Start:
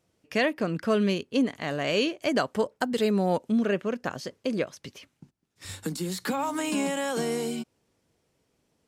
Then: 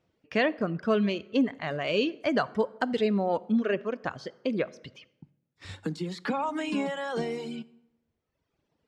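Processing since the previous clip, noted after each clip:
low-pass filter 3,700 Hz 12 dB per octave
reverb reduction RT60 1.3 s
convolution reverb RT60 0.95 s, pre-delay 8 ms, DRR 18.5 dB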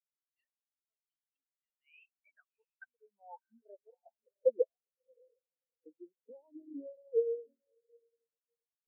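band-pass filter sweep 4,200 Hz → 430 Hz, 0:01.18–0:04.74
feedback delay with all-pass diffusion 668 ms, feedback 47%, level −7.5 dB
every bin expanded away from the loudest bin 4 to 1
level +1 dB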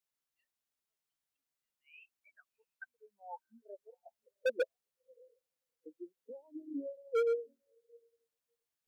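hard clipping −31.5 dBFS, distortion −5 dB
level +4.5 dB

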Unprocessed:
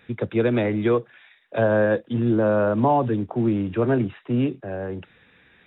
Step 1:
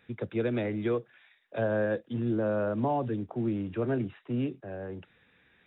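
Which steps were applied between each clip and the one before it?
dynamic equaliser 1,000 Hz, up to −4 dB, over −39 dBFS, Q 2.4
level −8.5 dB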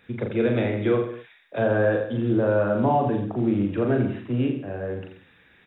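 reverse bouncing-ball delay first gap 40 ms, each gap 1.1×, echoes 5
level +5.5 dB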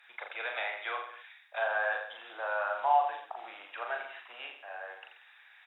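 harmonic generator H 2 −37 dB, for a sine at −9 dBFS
Chebyshev high-pass filter 750 Hz, order 4

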